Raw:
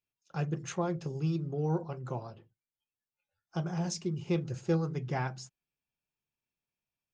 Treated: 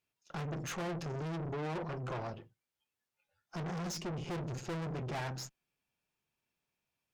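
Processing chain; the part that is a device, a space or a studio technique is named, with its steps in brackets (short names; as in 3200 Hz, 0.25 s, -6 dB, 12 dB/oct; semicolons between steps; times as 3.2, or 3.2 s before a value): tube preamp driven hard (tube stage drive 46 dB, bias 0.65; low shelf 160 Hz -5 dB; high shelf 5000 Hz -6 dB); gain +11 dB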